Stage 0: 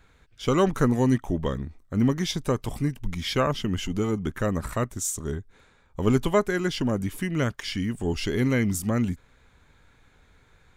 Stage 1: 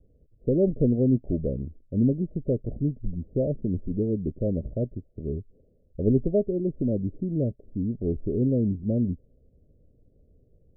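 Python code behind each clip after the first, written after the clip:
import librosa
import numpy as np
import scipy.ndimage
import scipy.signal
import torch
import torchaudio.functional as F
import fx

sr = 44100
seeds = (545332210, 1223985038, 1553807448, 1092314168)

y = scipy.signal.sosfilt(scipy.signal.butter(12, 620.0, 'lowpass', fs=sr, output='sos'), x)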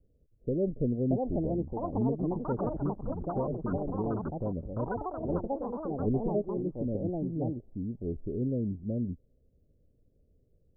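y = fx.echo_pitch(x, sr, ms=749, semitones=5, count=3, db_per_echo=-3.0)
y = y * librosa.db_to_amplitude(-7.5)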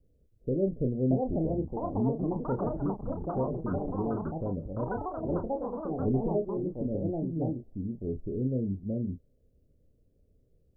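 y = fx.doubler(x, sr, ms=31.0, db=-7.5)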